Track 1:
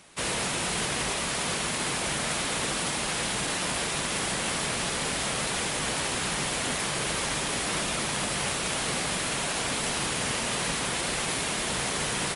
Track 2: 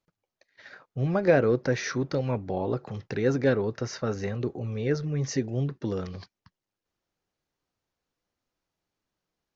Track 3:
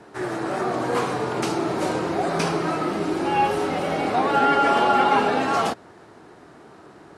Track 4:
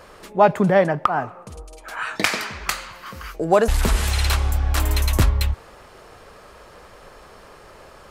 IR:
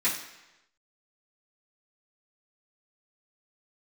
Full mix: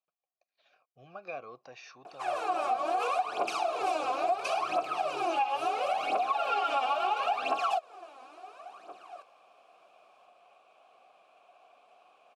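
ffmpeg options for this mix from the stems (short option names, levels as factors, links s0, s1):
-filter_complex "[0:a]bandpass=f=540:t=q:w=0.75:csg=0,adelay=2050,volume=0.112[s0];[1:a]aphaser=in_gain=1:out_gain=1:delay=1.1:decay=0.49:speed=0.25:type=sinusoidal,volume=0.398,asplit=3[s1][s2][s3];[s1]atrim=end=3.06,asetpts=PTS-STARTPTS,afade=t=out:st=3.056:d=0.004:c=hsin[s4];[s2]atrim=start=3.06:end=3.72,asetpts=PTS-STARTPTS,volume=0[s5];[s3]atrim=start=3.72,asetpts=PTS-STARTPTS,afade=t=in:d=0.004:c=hsin[s6];[s4][s5][s6]concat=n=3:v=0:a=1[s7];[2:a]highpass=250,asoftclip=type=tanh:threshold=0.15,aphaser=in_gain=1:out_gain=1:delay=4:decay=0.77:speed=0.73:type=triangular,adelay=2050,volume=1.33[s8];[3:a]acompressor=threshold=0.112:ratio=6,adelay=2150,volume=0.188[s9];[s0][s7][s8][s9]amix=inputs=4:normalize=0,asplit=3[s10][s11][s12];[s10]bandpass=f=730:t=q:w=8,volume=1[s13];[s11]bandpass=f=1090:t=q:w=8,volume=0.501[s14];[s12]bandpass=f=2440:t=q:w=8,volume=0.355[s15];[s13][s14][s15]amix=inputs=3:normalize=0,crystalizer=i=6.5:c=0,acompressor=threshold=0.0501:ratio=6"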